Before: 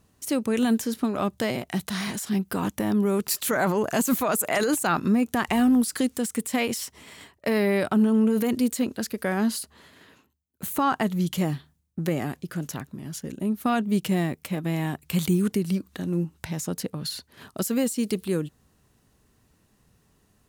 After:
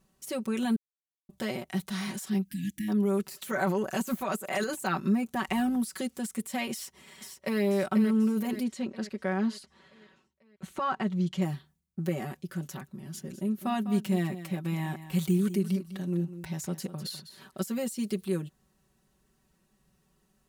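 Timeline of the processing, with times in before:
0:00.76–0:01.29: silence
0:02.42–0:02.88: time-frequency box erased 310–1,600 Hz
0:06.72–0:07.61: delay throw 490 ms, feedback 55%, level −7.5 dB
0:08.63–0:11.42: high-frequency loss of the air 93 metres
0:12.89–0:17.62: single-tap delay 201 ms −13 dB
whole clip: de-essing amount 50%; comb filter 5.3 ms, depth 90%; level −8.5 dB

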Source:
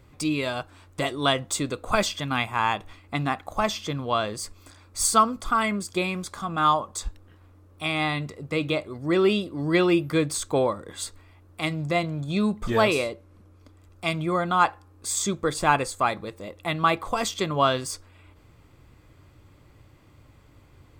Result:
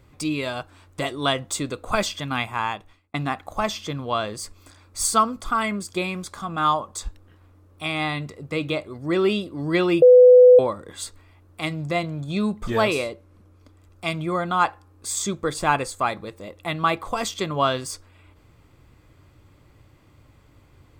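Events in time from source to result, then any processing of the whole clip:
0:02.51–0:03.14: fade out
0:10.02–0:10.59: beep over 499 Hz −6.5 dBFS

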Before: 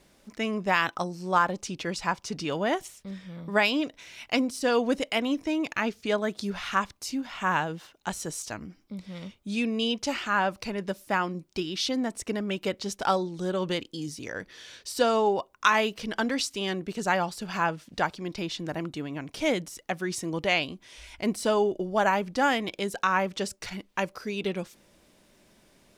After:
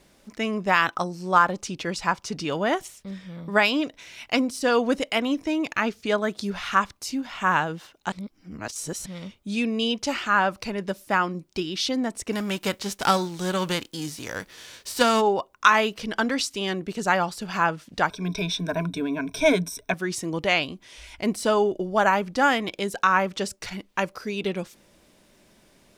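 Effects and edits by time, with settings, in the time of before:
0:08.12–0:09.06: reverse
0:12.31–0:15.20: spectral envelope flattened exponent 0.6
0:18.10–0:19.94: EQ curve with evenly spaced ripples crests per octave 1.6, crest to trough 17 dB
whole clip: dynamic equaliser 1,300 Hz, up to +4 dB, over −39 dBFS, Q 2.4; level +2.5 dB

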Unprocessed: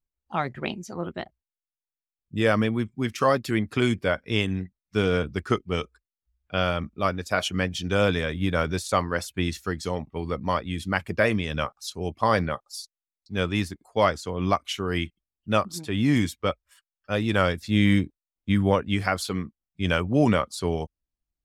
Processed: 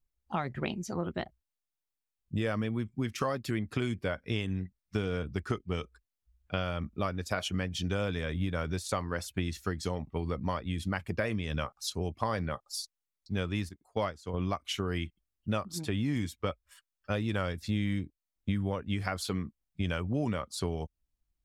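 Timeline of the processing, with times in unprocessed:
0:13.69–0:14.34: expander for the loud parts, over −38 dBFS
whole clip: low-shelf EQ 140 Hz +7 dB; downward compressor 5 to 1, threshold −29 dBFS

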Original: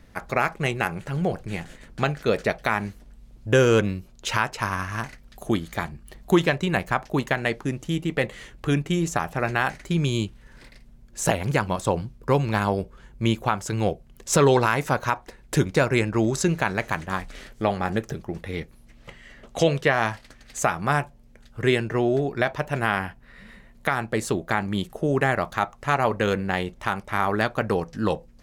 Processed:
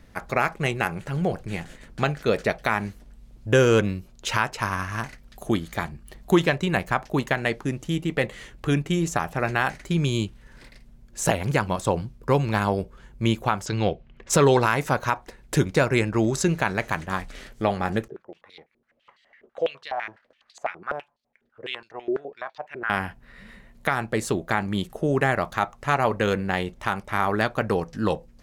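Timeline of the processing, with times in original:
0:13.65–0:14.29: low-pass with resonance 5,300 Hz → 2,000 Hz, resonance Q 1.8
0:18.08–0:22.90: band-pass on a step sequencer 12 Hz 380–4,200 Hz

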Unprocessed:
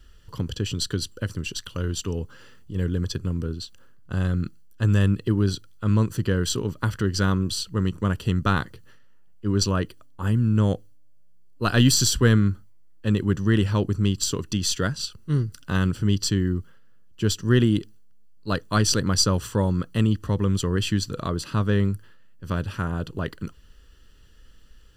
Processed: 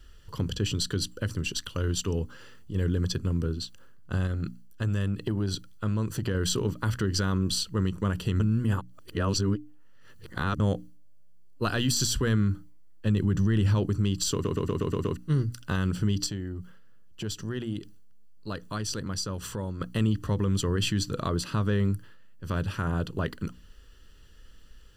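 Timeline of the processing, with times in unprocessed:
0:04.26–0:06.35: downward compressor, threshold −23 dBFS
0:08.40–0:10.60: reverse
0:13.06–0:13.77: bass and treble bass +6 dB, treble +1 dB
0:14.33: stutter in place 0.12 s, 7 plays
0:16.26–0:19.81: downward compressor 3 to 1, threshold −32 dBFS
whole clip: mains-hum notches 60/120/180/240/300 Hz; brickwall limiter −17 dBFS

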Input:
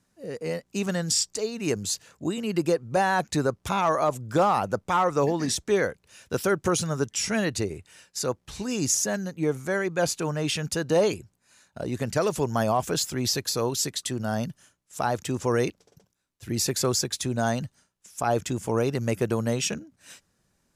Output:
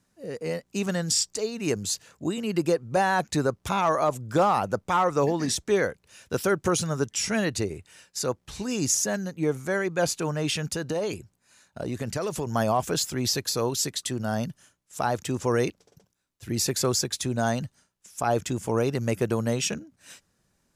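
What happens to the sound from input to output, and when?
0:10.62–0:12.47: downward compressor 5 to 1, threshold −25 dBFS

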